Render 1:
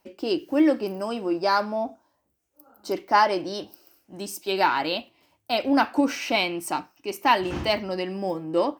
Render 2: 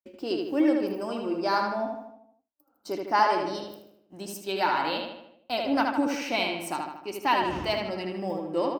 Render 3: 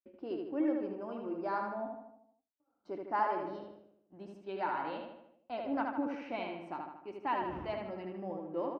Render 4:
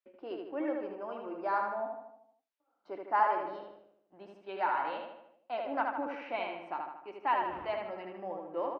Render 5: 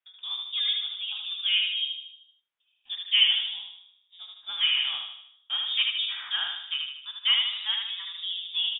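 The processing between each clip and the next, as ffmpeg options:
ffmpeg -i in.wav -filter_complex "[0:a]agate=range=-33dB:threshold=-46dB:ratio=3:detection=peak,asplit=2[link_01][link_02];[link_02]adelay=77,lowpass=frequency=4100:poles=1,volume=-3dB,asplit=2[link_03][link_04];[link_04]adelay=77,lowpass=frequency=4100:poles=1,volume=0.54,asplit=2[link_05][link_06];[link_06]adelay=77,lowpass=frequency=4100:poles=1,volume=0.54,asplit=2[link_07][link_08];[link_08]adelay=77,lowpass=frequency=4100:poles=1,volume=0.54,asplit=2[link_09][link_10];[link_10]adelay=77,lowpass=frequency=4100:poles=1,volume=0.54,asplit=2[link_11][link_12];[link_12]adelay=77,lowpass=frequency=4100:poles=1,volume=0.54,asplit=2[link_13][link_14];[link_14]adelay=77,lowpass=frequency=4100:poles=1,volume=0.54[link_15];[link_03][link_05][link_07][link_09][link_11][link_13][link_15]amix=inputs=7:normalize=0[link_16];[link_01][link_16]amix=inputs=2:normalize=0,volume=-5dB" out.wav
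ffmpeg -i in.wav -af "lowpass=1700,volume=-9dB" out.wav
ffmpeg -i in.wav -filter_complex "[0:a]acrossover=split=470 3900:gain=0.2 1 0.224[link_01][link_02][link_03];[link_01][link_02][link_03]amix=inputs=3:normalize=0,volume=5dB" out.wav
ffmpeg -i in.wav -af "lowpass=frequency=3300:width_type=q:width=0.5098,lowpass=frequency=3300:width_type=q:width=0.6013,lowpass=frequency=3300:width_type=q:width=0.9,lowpass=frequency=3300:width_type=q:width=2.563,afreqshift=-3900,tremolo=f=210:d=0.182,volume=7dB" out.wav

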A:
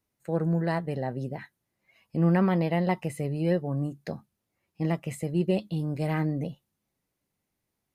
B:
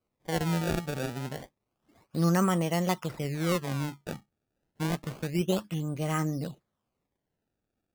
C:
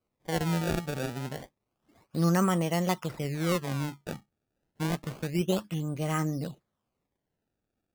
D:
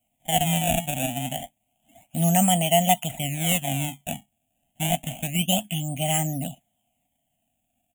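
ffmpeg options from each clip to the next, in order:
ffmpeg -i in.wav -af "equalizer=frequency=1250:width_type=o:width=0.33:gain=11,equalizer=frequency=3150:width_type=o:width=0.33:gain=12,equalizer=frequency=8000:width_type=o:width=0.33:gain=-5,acrusher=samples=24:mix=1:aa=0.000001:lfo=1:lforange=38.4:lforate=0.29,volume=-2.5dB" out.wav
ffmpeg -i in.wav -af anull out.wav
ffmpeg -i in.wav -af "firequalizer=gain_entry='entry(170,0);entry(260,5);entry(390,-26);entry(700,14);entry(1100,-21);entry(2100,3);entry(3100,14);entry(4700,-25);entry(6900,14)':delay=0.05:min_phase=1,volume=3.5dB" out.wav

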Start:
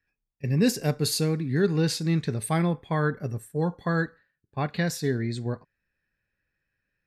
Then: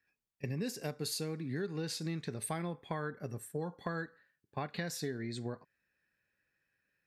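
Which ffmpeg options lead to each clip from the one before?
ffmpeg -i in.wav -af "highpass=frequency=220:poles=1,acompressor=threshold=-35dB:ratio=6" out.wav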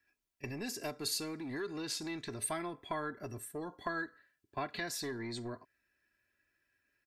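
ffmpeg -i in.wav -filter_complex "[0:a]aecho=1:1:3:0.62,acrossover=split=570|5700[link_01][link_02][link_03];[link_01]asoftclip=type=tanh:threshold=-40dB[link_04];[link_04][link_02][link_03]amix=inputs=3:normalize=0,volume=1dB" out.wav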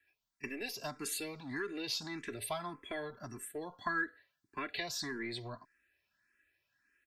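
ffmpeg -i in.wav -filter_complex "[0:a]acrossover=split=690|3300[link_01][link_02][link_03];[link_02]crystalizer=i=5.5:c=0[link_04];[link_01][link_04][link_03]amix=inputs=3:normalize=0,asplit=2[link_05][link_06];[link_06]afreqshift=1.7[link_07];[link_05][link_07]amix=inputs=2:normalize=1,volume=1dB" out.wav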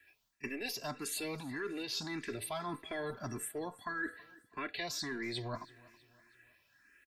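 ffmpeg -i in.wav -af "areverse,acompressor=threshold=-47dB:ratio=6,areverse,aecho=1:1:325|650|975:0.0794|0.0365|0.0168,volume=10dB" out.wav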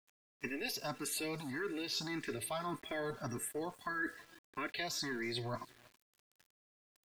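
ffmpeg -i in.wav -af "aeval=exprs='val(0)*gte(abs(val(0)),0.00168)':channel_layout=same" out.wav

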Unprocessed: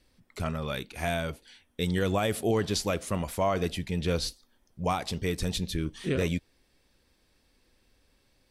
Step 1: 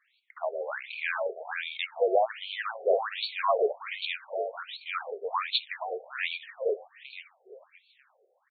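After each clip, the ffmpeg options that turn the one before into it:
ffmpeg -i in.wav -filter_complex "[0:a]asplit=2[link_01][link_02];[link_02]aecho=0:1:471|942|1413|1884|2355:0.708|0.255|0.0917|0.033|0.0119[link_03];[link_01][link_03]amix=inputs=2:normalize=0,afftfilt=real='re*between(b*sr/1024,520*pow(3200/520,0.5+0.5*sin(2*PI*1.3*pts/sr))/1.41,520*pow(3200/520,0.5+0.5*sin(2*PI*1.3*pts/sr))*1.41)':imag='im*between(b*sr/1024,520*pow(3200/520,0.5+0.5*sin(2*PI*1.3*pts/sr))/1.41,520*pow(3200/520,0.5+0.5*sin(2*PI*1.3*pts/sr))*1.41)':win_size=1024:overlap=0.75,volume=7dB" out.wav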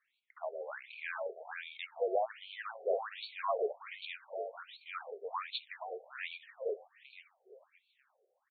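ffmpeg -i in.wav -af "highshelf=frequency=3900:gain=-9,volume=-8dB" out.wav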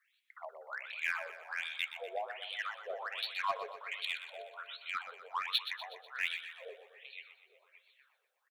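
ffmpeg -i in.wav -filter_complex "[0:a]highpass=1400,asplit=2[link_01][link_02];[link_02]acrusher=bits=5:mix=0:aa=0.5,volume=-10dB[link_03];[link_01][link_03]amix=inputs=2:normalize=0,aecho=1:1:123|246|369|492|615|738:0.282|0.147|0.0762|0.0396|0.0206|0.0107,volume=6dB" out.wav

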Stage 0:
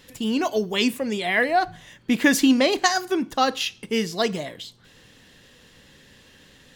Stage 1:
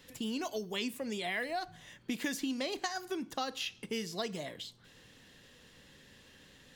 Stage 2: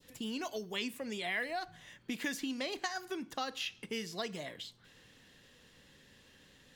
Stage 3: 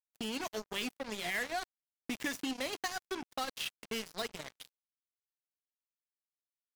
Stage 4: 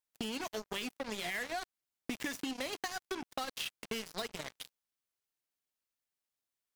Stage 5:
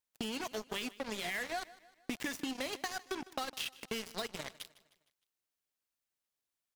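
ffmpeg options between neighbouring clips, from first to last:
ffmpeg -i in.wav -filter_complex "[0:a]acrossover=split=92|3500[link_01][link_02][link_03];[link_01]acompressor=threshold=-60dB:ratio=4[link_04];[link_02]acompressor=threshold=-29dB:ratio=4[link_05];[link_03]acompressor=threshold=-36dB:ratio=4[link_06];[link_04][link_05][link_06]amix=inputs=3:normalize=0,volume=-6.5dB" out.wav
ffmpeg -i in.wav -af "adynamicequalizer=threshold=0.00355:dfrequency=1900:dqfactor=0.75:tfrequency=1900:tqfactor=0.75:attack=5:release=100:ratio=0.375:range=2:mode=boostabove:tftype=bell,volume=-3dB" out.wav
ffmpeg -i in.wav -af "acrusher=bits=5:mix=0:aa=0.5" out.wav
ffmpeg -i in.wav -af "acompressor=threshold=-39dB:ratio=6,volume=4.5dB" out.wav
ffmpeg -i in.wav -af "aecho=1:1:154|308|462|616:0.106|0.0508|0.0244|0.0117" out.wav

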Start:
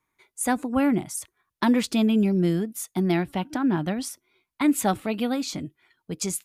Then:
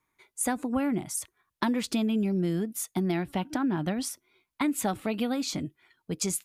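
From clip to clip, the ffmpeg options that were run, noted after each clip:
ffmpeg -i in.wav -af "acompressor=threshold=-24dB:ratio=6" out.wav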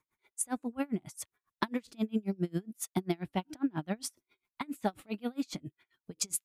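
ffmpeg -i in.wav -af "aeval=exprs='val(0)*pow(10,-33*(0.5-0.5*cos(2*PI*7.4*n/s))/20)':channel_layout=same" out.wav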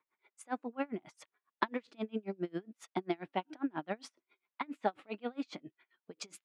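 ffmpeg -i in.wav -af "highpass=360,lowpass=2800,volume=1.5dB" out.wav

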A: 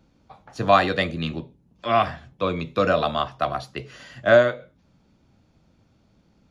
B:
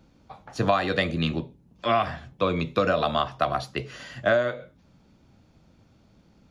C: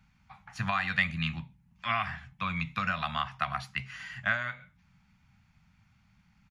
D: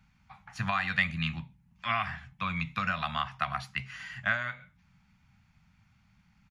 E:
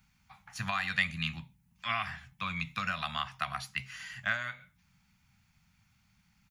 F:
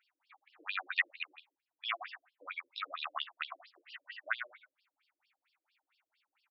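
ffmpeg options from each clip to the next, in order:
ffmpeg -i in.wav -af "acompressor=threshold=-21dB:ratio=6,volume=2.5dB" out.wav
ffmpeg -i in.wav -af "firequalizer=gain_entry='entry(190,0);entry(290,-18);entry(430,-30);entry(800,-2);entry(2100,9);entry(3600,-2);entry(8000,0)':delay=0.05:min_phase=1,volume=-5.5dB" out.wav
ffmpeg -i in.wav -af anull out.wav
ffmpeg -i in.wav -af "crystalizer=i=3:c=0,volume=-5dB" out.wav
ffmpeg -i in.wav -af "afftfilt=real='re*between(b*sr/1024,380*pow(4000/380,0.5+0.5*sin(2*PI*4.4*pts/sr))/1.41,380*pow(4000/380,0.5+0.5*sin(2*PI*4.4*pts/sr))*1.41)':imag='im*between(b*sr/1024,380*pow(4000/380,0.5+0.5*sin(2*PI*4.4*pts/sr))/1.41,380*pow(4000/380,0.5+0.5*sin(2*PI*4.4*pts/sr))*1.41)':win_size=1024:overlap=0.75,volume=1.5dB" out.wav

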